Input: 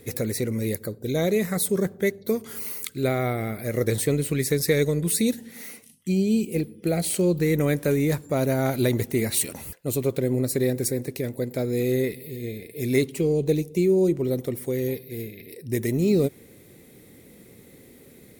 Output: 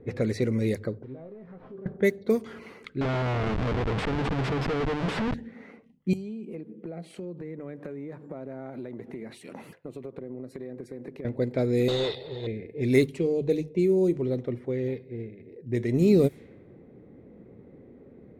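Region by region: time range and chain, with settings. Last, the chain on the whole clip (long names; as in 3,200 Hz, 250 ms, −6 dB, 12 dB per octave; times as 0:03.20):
0:01.03–0:01.86: linear delta modulator 32 kbit/s, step −38 dBFS + downward compressor 8 to 1, threshold −33 dBFS + tuned comb filter 130 Hz, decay 0.21 s, mix 80%
0:03.01–0:05.34: EQ curve with evenly spaced ripples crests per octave 1.7, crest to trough 8 dB + downward compressor 8 to 1, threshold −22 dBFS + comparator with hysteresis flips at −29.5 dBFS
0:06.13–0:11.25: high-pass filter 150 Hz 24 dB per octave + downward compressor 16 to 1, threshold −34 dBFS + parametric band 12,000 Hz +14 dB 1 octave
0:11.88–0:12.47: drawn EQ curve 100 Hz 0 dB, 170 Hz −10 dB, 240 Hz −19 dB, 460 Hz −6 dB, 940 Hz +9 dB, 1,500 Hz −1 dB, 2,300 Hz −17 dB, 3,500 Hz +13 dB, 10,000 Hz −4 dB + mid-hump overdrive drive 22 dB, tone 2,500 Hz, clips at −17.5 dBFS
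0:13.06–0:15.94: mains-hum notches 50/100/150 Hz + tuned comb filter 120 Hz, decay 0.36 s, mix 40%
whole clip: low-pass that shuts in the quiet parts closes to 880 Hz, open at −19.5 dBFS; high-shelf EQ 5,100 Hz −9.5 dB; mains-hum notches 50/100/150 Hz; level +1 dB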